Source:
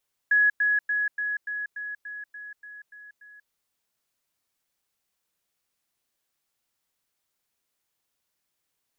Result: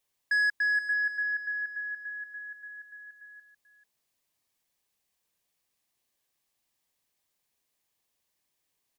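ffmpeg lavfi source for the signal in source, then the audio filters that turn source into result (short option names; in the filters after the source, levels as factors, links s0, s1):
-f lavfi -i "aevalsrc='pow(10,(-16.5-3*floor(t/0.29))/20)*sin(2*PI*1680*t)*clip(min(mod(t,0.29),0.19-mod(t,0.29))/0.005,0,1)':d=3.19:s=44100"
-filter_complex "[0:a]bandreject=f=1400:w=5.9,asoftclip=type=tanh:threshold=0.0794,asplit=2[s0][s1];[s1]aecho=0:1:438:0.266[s2];[s0][s2]amix=inputs=2:normalize=0"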